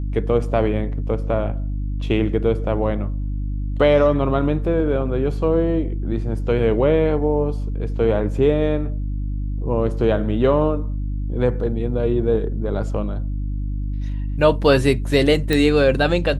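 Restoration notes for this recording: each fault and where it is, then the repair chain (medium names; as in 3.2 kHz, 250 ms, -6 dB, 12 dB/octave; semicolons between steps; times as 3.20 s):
hum 50 Hz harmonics 6 -24 dBFS
15.53 s: pop -7 dBFS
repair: de-click; de-hum 50 Hz, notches 6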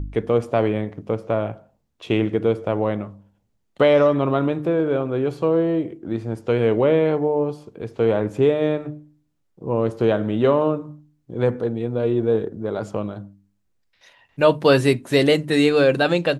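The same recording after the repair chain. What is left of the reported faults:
nothing left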